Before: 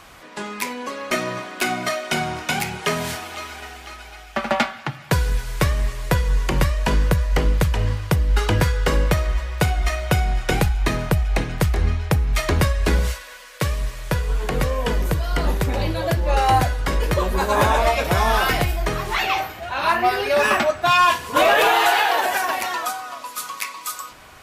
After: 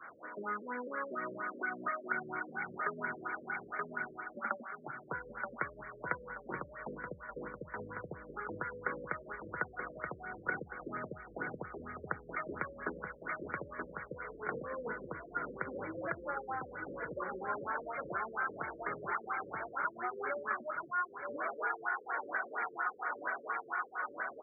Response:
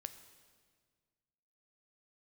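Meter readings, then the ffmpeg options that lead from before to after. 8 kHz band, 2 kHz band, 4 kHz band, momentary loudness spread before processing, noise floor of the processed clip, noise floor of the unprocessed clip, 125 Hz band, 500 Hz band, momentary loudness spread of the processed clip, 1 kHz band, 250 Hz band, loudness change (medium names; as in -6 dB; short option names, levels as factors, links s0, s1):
under -40 dB, -13.5 dB, under -40 dB, 13 LU, -55 dBFS, -41 dBFS, -31.5 dB, -19.0 dB, 8 LU, -17.0 dB, -19.5 dB, -19.0 dB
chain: -filter_complex "[0:a]equalizer=f=1400:w=3.4:g=13,asplit=2[s0][s1];[s1]aecho=0:1:927|1854|2781|3708|4635|5562:0.355|0.185|0.0959|0.0499|0.0259|0.0135[s2];[s0][s2]amix=inputs=2:normalize=0,agate=range=0.0224:threshold=0.00891:ratio=3:detection=peak,acompressor=threshold=0.0708:ratio=10,adynamicequalizer=threshold=0.00631:dfrequency=690:dqfactor=1.6:tfrequency=690:tqfactor=1.6:attack=5:release=100:ratio=0.375:range=3.5:mode=cutabove:tftype=bell,acompressor=mode=upward:threshold=0.00562:ratio=2.5,highpass=290,afftfilt=real='re*lt(b*sr/1024,560*pow(2400/560,0.5+0.5*sin(2*PI*4.3*pts/sr)))':imag='im*lt(b*sr/1024,560*pow(2400/560,0.5+0.5*sin(2*PI*4.3*pts/sr)))':win_size=1024:overlap=0.75,volume=0.501"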